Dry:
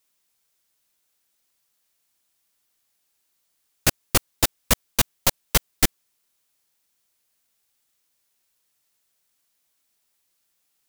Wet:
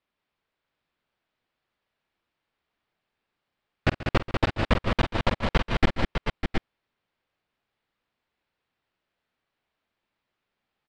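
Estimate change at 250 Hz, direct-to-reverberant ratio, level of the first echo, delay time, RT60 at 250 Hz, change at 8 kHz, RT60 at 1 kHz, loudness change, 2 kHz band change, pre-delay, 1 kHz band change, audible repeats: +3.5 dB, none, -15.0 dB, 50 ms, none, -26.5 dB, none, -5.0 dB, 0.0 dB, none, +2.0 dB, 5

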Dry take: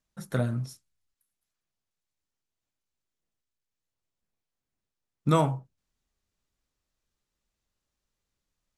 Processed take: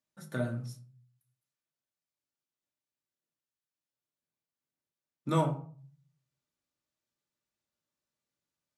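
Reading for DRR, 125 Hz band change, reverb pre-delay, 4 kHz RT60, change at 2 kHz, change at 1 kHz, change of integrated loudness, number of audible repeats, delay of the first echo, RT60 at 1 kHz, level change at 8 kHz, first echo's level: 2.0 dB, -5.5 dB, 3 ms, 0.25 s, -3.5 dB, -5.0 dB, -5.0 dB, none, none, 0.40 s, -6.5 dB, none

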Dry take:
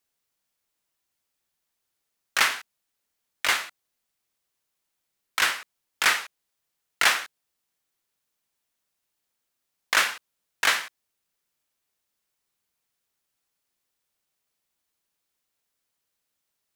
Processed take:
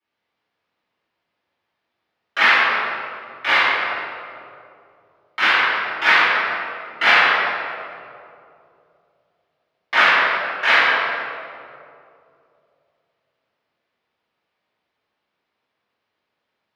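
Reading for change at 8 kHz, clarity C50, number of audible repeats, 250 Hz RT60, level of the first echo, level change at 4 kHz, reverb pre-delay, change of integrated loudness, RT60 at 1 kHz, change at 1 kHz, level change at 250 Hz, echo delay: under -10 dB, -4.5 dB, none, 2.8 s, none, +5.5 dB, 3 ms, +7.5 dB, 2.3 s, +12.0 dB, +12.0 dB, none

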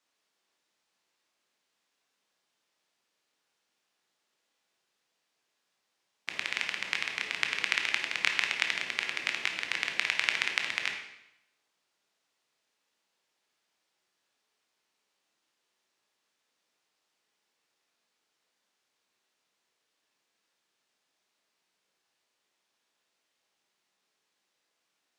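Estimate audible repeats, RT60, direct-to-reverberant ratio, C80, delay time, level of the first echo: none, 0.80 s, 3.0 dB, 8.5 dB, none, none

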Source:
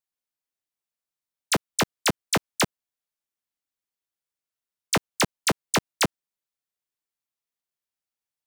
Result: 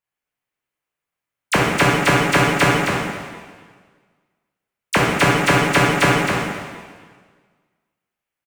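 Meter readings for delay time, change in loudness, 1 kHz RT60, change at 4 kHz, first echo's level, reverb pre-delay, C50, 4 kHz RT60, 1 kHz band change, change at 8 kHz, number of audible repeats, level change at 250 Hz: 0.263 s, +9.0 dB, 1.6 s, +5.0 dB, -5.0 dB, 5 ms, -2.5 dB, 1.5 s, +12.0 dB, +1.5 dB, 1, +10.5 dB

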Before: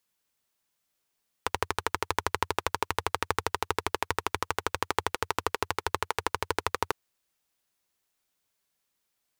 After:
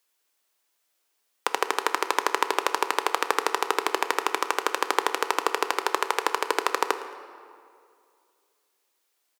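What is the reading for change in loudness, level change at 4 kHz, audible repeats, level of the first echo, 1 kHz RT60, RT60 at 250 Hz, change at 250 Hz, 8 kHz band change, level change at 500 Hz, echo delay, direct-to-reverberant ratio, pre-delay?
+5.5 dB, +5.5 dB, 1, -19.5 dB, 2.3 s, 2.6 s, +3.5 dB, +5.5 dB, +5.5 dB, 0.111 s, 9.5 dB, 11 ms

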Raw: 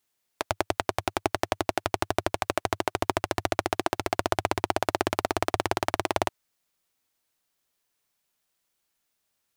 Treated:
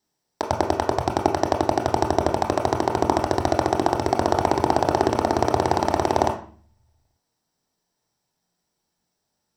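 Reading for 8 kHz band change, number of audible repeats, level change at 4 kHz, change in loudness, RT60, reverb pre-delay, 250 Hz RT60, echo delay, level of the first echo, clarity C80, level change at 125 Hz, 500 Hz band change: +1.5 dB, none, +0.5 dB, +6.5 dB, 0.45 s, 21 ms, 0.75 s, none, none, 13.0 dB, +8.5 dB, +7.5 dB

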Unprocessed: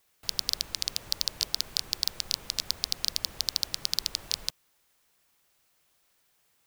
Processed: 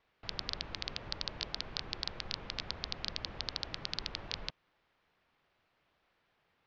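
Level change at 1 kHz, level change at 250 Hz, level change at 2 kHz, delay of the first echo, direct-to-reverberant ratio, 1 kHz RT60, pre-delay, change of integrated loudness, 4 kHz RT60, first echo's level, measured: +1.5 dB, +2.0 dB, -1.0 dB, none, none, none, none, -9.5 dB, none, none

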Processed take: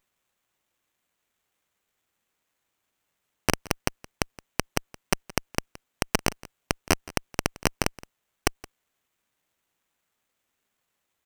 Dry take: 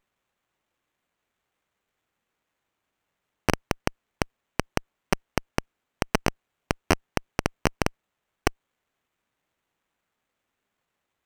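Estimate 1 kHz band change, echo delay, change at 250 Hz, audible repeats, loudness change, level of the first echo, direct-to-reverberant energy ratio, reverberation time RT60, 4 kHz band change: -1.5 dB, 0.17 s, -2.0 dB, 1, 0.0 dB, -20.5 dB, none, none, +3.0 dB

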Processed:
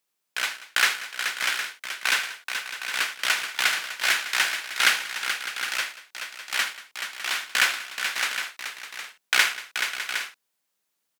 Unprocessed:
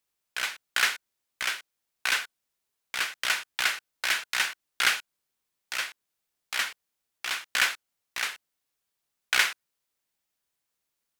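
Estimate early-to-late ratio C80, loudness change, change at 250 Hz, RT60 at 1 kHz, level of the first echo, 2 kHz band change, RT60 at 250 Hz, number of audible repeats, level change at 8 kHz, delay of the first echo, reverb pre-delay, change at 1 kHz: none, +3.0 dB, +4.5 dB, none, -16.5 dB, +4.5 dB, none, 6, +4.5 dB, 77 ms, none, +4.5 dB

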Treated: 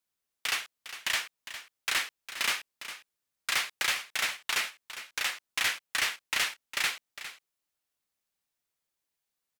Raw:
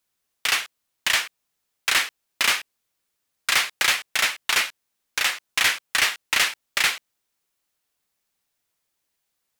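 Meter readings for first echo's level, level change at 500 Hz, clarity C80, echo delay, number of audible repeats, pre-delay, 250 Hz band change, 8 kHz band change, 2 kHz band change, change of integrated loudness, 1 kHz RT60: -12.5 dB, -8.5 dB, none, 0.406 s, 1, none, -8.0 dB, -8.0 dB, -8.5 dB, -8.5 dB, none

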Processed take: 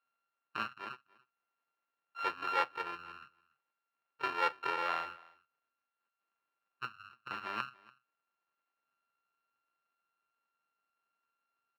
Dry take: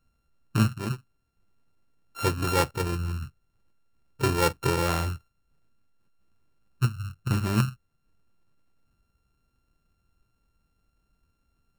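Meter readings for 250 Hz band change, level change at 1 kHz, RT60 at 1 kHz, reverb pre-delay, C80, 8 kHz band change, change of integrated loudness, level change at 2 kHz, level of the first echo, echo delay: -23.5 dB, -4.0 dB, none, none, none, under -25 dB, -9.5 dB, -4.0 dB, -23.5 dB, 0.288 s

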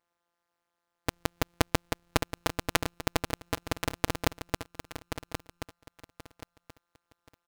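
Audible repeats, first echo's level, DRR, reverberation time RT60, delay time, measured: 3, -8.5 dB, none, none, 1.079 s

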